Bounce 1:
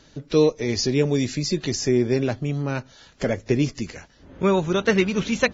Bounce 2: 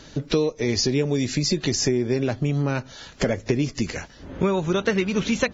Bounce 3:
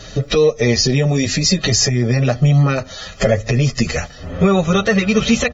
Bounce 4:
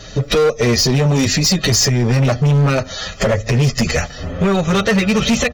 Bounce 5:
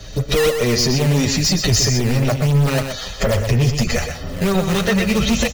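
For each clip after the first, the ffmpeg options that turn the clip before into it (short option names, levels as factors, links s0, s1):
-af "acompressor=threshold=0.0447:ratio=6,volume=2.51"
-filter_complex "[0:a]aecho=1:1:1.6:0.62,alimiter=level_in=4.47:limit=0.891:release=50:level=0:latency=1,asplit=2[s0][s1];[s1]adelay=7.3,afreqshift=0.64[s2];[s0][s2]amix=inputs=2:normalize=1,volume=0.891"
-af "dynaudnorm=f=140:g=3:m=3.76,asoftclip=type=hard:threshold=0.299"
-filter_complex "[0:a]acrossover=split=100|1600[s0][s1][s2];[s0]aphaser=in_gain=1:out_gain=1:delay=4.3:decay=0.6:speed=0.58:type=triangular[s3];[s1]acrusher=samples=11:mix=1:aa=0.000001:lfo=1:lforange=17.6:lforate=3[s4];[s3][s4][s2]amix=inputs=3:normalize=0,aecho=1:1:124:0.447,volume=0.708"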